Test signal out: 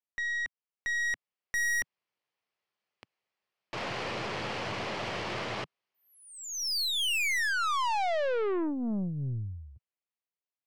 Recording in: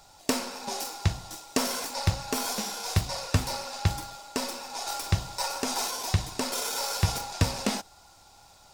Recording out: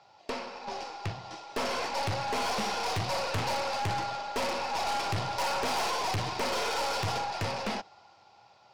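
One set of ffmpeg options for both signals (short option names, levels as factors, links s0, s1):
-af "highpass=f=120:w=0.5412,highpass=f=120:w=1.3066,equalizer=f=160:t=q:w=4:g=-9,equalizer=f=270:t=q:w=4:g=-10,equalizer=f=1500:t=q:w=4:g=-4,equalizer=f=3700:t=q:w=4:g=-7,lowpass=f=4200:w=0.5412,lowpass=f=4200:w=1.3066,dynaudnorm=f=160:g=21:m=6.31,aeval=exprs='(tanh(25.1*val(0)+0.35)-tanh(0.35))/25.1':c=same"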